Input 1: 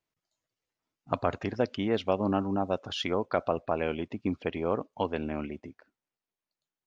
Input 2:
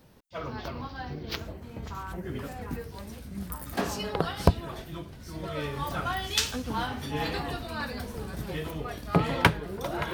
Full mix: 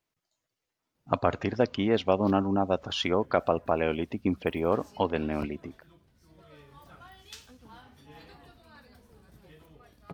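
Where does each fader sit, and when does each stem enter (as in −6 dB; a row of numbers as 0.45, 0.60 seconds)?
+3.0, −20.0 decibels; 0.00, 0.95 seconds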